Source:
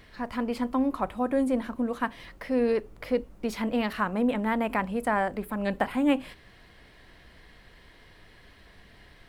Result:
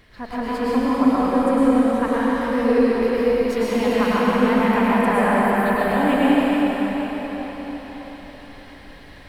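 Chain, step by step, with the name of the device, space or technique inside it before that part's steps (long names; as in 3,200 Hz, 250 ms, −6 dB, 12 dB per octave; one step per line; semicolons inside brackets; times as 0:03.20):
cathedral (convolution reverb RT60 5.3 s, pre-delay 98 ms, DRR −9.5 dB)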